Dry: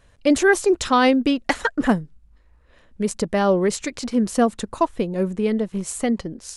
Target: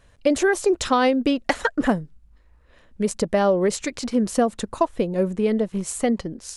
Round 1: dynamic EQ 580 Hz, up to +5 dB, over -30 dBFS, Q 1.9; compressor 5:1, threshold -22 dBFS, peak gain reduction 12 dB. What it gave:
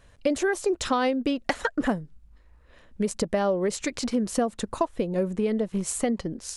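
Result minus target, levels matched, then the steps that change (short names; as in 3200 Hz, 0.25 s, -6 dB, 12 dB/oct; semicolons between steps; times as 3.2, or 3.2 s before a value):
compressor: peak gain reduction +5.5 dB
change: compressor 5:1, threshold -15 dBFS, peak gain reduction 6.5 dB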